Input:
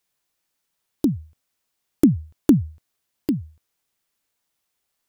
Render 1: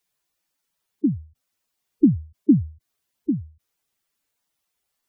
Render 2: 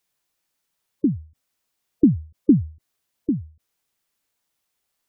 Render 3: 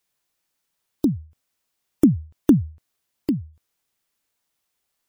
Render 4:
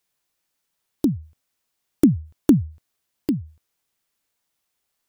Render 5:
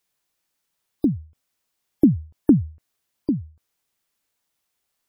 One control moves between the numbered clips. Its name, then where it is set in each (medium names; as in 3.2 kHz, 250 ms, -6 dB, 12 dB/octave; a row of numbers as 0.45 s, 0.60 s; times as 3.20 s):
spectral gate, under each frame's peak: -10 dB, -20 dB, -45 dB, -60 dB, -35 dB